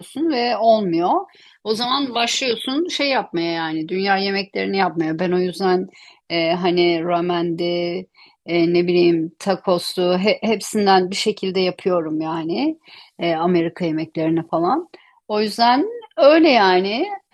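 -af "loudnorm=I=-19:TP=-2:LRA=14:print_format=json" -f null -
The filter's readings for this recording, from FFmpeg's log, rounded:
"input_i" : "-18.5",
"input_tp" : "-1.3",
"input_lra" : "3.5",
"input_thresh" : "-28.8",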